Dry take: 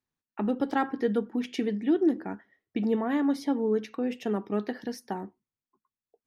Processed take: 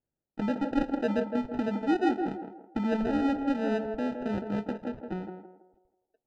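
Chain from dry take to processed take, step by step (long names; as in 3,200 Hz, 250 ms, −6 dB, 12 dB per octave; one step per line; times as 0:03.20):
notch filter 410 Hz, Q 12
decimation without filtering 40×
head-to-tape spacing loss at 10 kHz 33 dB, from 0:04.87 at 10 kHz 44 dB
feedback echo with a band-pass in the loop 163 ms, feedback 42%, band-pass 570 Hz, level −4 dB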